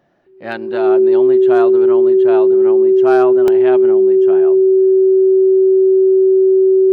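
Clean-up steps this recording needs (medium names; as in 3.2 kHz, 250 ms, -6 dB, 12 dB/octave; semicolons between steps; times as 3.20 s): band-stop 380 Hz, Q 30; interpolate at 3.48 s, 1.3 ms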